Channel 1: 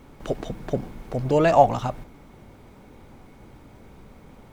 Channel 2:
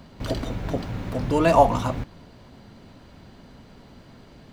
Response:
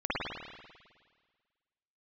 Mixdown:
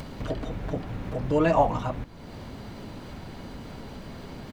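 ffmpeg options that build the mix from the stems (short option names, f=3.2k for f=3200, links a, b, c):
-filter_complex "[0:a]volume=-9dB[a];[1:a]acrossover=split=3300[b][c];[c]acompressor=threshold=-56dB:ratio=4:attack=1:release=60[d];[b][d]amix=inputs=2:normalize=0,volume=-1,adelay=3.4,volume=-5dB[e];[a][e]amix=inputs=2:normalize=0,acompressor=mode=upward:threshold=-28dB:ratio=2.5"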